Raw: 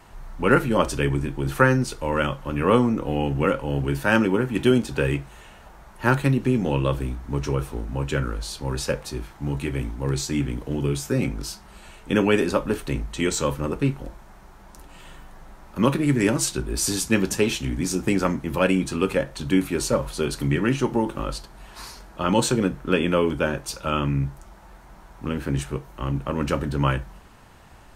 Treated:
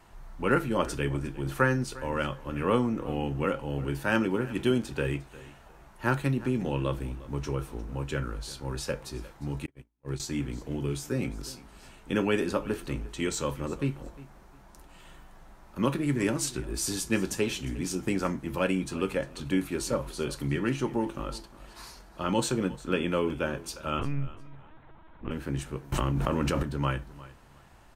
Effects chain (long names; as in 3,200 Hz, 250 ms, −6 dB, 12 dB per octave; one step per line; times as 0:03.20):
0:23.99–0:25.31: linear-prediction vocoder at 8 kHz pitch kept
tuned comb filter 340 Hz, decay 0.22 s, harmonics all, mix 40%
repeating echo 354 ms, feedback 24%, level −19 dB
0:09.66–0:10.20: noise gate −26 dBFS, range −43 dB
0:25.92–0:26.63: envelope flattener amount 100%
level −3 dB